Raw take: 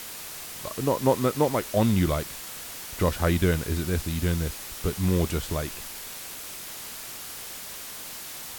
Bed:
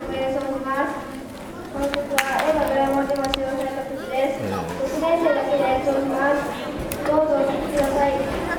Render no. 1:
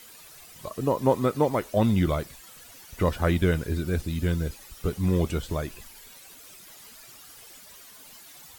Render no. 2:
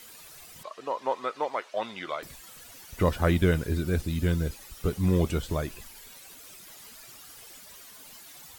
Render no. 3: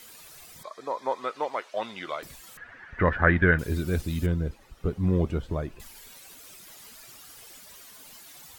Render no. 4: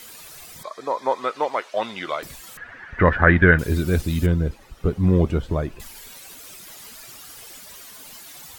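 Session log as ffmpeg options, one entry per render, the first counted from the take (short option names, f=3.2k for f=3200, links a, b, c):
-af "afftdn=nr=13:nf=-39"
-filter_complex "[0:a]asettb=1/sr,asplit=3[a][b][c];[a]atrim=end=0.634[d];[b]atrim=start=0.63:end=2.23,asetpts=PTS-STARTPTS,afade=t=in:d=0.004:c=qsin,afade=t=out:st=1.596:d=0.004:c=qsin,highpass=770,lowpass=4.3k[e];[c]atrim=start=2.226[f];[d][e]acrossfade=d=0.004:c1=hsin:c2=qsin[g];[g][f]acrossfade=d=0.004:c1=qsin:c2=hsin"
-filter_complex "[0:a]asettb=1/sr,asplit=3[a][b][c];[a]atrim=end=0.564[d];[b]atrim=start=0.56:end=1.19,asetpts=PTS-STARTPTS,afade=t=in:d=0.004:c=qsin,afade=t=out:st=0.626:d=0.004:c=qsin,asuperstop=centerf=2800:order=8:qfactor=4.8[e];[c]atrim=start=1.186[f];[d][e]acrossfade=d=0.004:c1=hsin:c2=qsin[g];[g][f]acrossfade=d=0.004:c1=qsin:c2=hsin,asettb=1/sr,asplit=3[h][i][j];[h]atrim=end=2.574[k];[i]atrim=start=2.57:end=3.59,asetpts=PTS-STARTPTS,afade=t=in:d=0.004:c=qsin,afade=t=out:st=1.016:d=0.004:c=qsin,lowpass=f=1.7k:t=q:w=6.5[l];[j]atrim=start=3.586[m];[k][l]acrossfade=d=0.004:c1=hsin:c2=qsin[n];[n][m]acrossfade=d=0.004:c1=qsin:c2=hsin,asettb=1/sr,asplit=3[o][p][q];[o]atrim=end=4.264[r];[p]atrim=start=4.26:end=5.8,asetpts=PTS-STARTPTS,afade=t=in:d=0.004:c=qsin,afade=t=out:st=1.536:d=0.004:c=qsin,lowpass=f=1.1k:p=1[s];[q]atrim=start=5.796[t];[r][s]acrossfade=d=0.004:c1=hsin:c2=qsin[u];[u][t]acrossfade=d=0.004:c1=qsin:c2=hsin"
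-af "volume=6.5dB,alimiter=limit=-1dB:level=0:latency=1"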